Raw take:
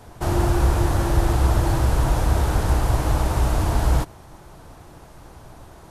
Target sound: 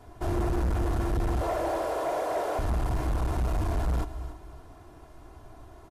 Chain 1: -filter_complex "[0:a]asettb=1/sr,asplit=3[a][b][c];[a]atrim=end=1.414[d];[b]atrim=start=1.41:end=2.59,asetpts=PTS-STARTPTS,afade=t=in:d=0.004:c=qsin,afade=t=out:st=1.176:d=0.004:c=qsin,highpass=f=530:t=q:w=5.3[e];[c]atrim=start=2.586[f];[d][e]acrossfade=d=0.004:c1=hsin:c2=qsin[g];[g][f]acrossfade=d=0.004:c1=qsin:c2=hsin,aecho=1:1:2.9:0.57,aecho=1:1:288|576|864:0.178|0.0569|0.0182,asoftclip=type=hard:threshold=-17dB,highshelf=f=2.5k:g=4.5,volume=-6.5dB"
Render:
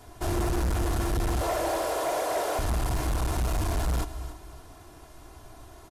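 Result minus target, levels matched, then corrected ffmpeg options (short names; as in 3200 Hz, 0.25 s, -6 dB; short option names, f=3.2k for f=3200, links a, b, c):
4000 Hz band +7.0 dB
-filter_complex "[0:a]asettb=1/sr,asplit=3[a][b][c];[a]atrim=end=1.414[d];[b]atrim=start=1.41:end=2.59,asetpts=PTS-STARTPTS,afade=t=in:d=0.004:c=qsin,afade=t=out:st=1.176:d=0.004:c=qsin,highpass=f=530:t=q:w=5.3[e];[c]atrim=start=2.586[f];[d][e]acrossfade=d=0.004:c1=hsin:c2=qsin[g];[g][f]acrossfade=d=0.004:c1=qsin:c2=hsin,aecho=1:1:2.9:0.57,aecho=1:1:288|576|864:0.178|0.0569|0.0182,asoftclip=type=hard:threshold=-17dB,highshelf=f=2.5k:g=-7,volume=-6.5dB"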